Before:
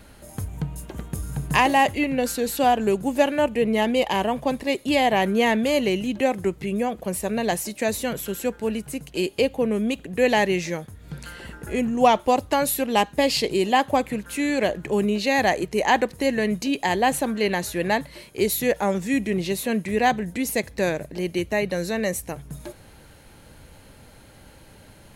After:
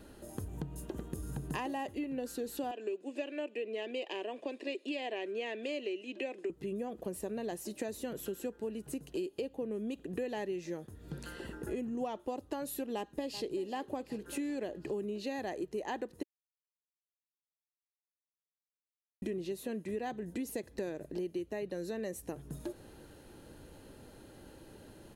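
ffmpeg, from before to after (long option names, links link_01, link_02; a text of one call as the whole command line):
ffmpeg -i in.wav -filter_complex "[0:a]asettb=1/sr,asplit=3[link_01][link_02][link_03];[link_01]atrim=end=2.714[link_04];[link_02]atrim=start=2.71:end=6.5,asetpts=PTS-STARTPTS,afade=type=in:duration=0.004:curve=qsin,afade=type=out:start_time=3.786:duration=0.004:curve=qsin,highpass=frequency=340:width=0.5412,highpass=frequency=340:width=1.3066,equalizer=frequency=490:width_type=q:width=4:gain=-4,equalizer=frequency=850:width_type=q:width=4:gain=-10,equalizer=frequency=1300:width_type=q:width=4:gain=-9,equalizer=frequency=2500:width_type=q:width=4:gain=9,equalizer=frequency=6200:width_type=q:width=4:gain=-6,lowpass=frequency=7400:width=0.5412,lowpass=frequency=7400:width=1.3066[link_05];[link_03]atrim=start=6.496[link_06];[link_04][link_05]acrossfade=duration=0.004:curve1=hsin:curve2=qsin[link_07];[link_07][link_06]acrossfade=duration=0.004:curve1=qsin:curve2=hsin,asplit=2[link_08][link_09];[link_09]afade=type=in:start_time=12.95:duration=0.01,afade=type=out:start_time=13.54:duration=0.01,aecho=0:1:380|760|1140|1520|1900:0.16788|0.0923342|0.0507838|0.0279311|0.0153621[link_10];[link_08][link_10]amix=inputs=2:normalize=0,asplit=3[link_11][link_12][link_13];[link_11]atrim=end=16.23,asetpts=PTS-STARTPTS,afade=type=out:start_time=16.226:duration=0.004:curve=hsin[link_14];[link_12]atrim=start=16.23:end=19.22,asetpts=PTS-STARTPTS,volume=0[link_15];[link_13]atrim=start=19.22,asetpts=PTS-STARTPTS,afade=type=in:duration=0.004:curve=hsin[link_16];[link_14][link_15][link_16]concat=n=3:v=0:a=1,equalizer=frequency=350:width=1.3:gain=11,bandreject=frequency=2200:width=7.4,acompressor=threshold=-27dB:ratio=6,volume=-8.5dB" out.wav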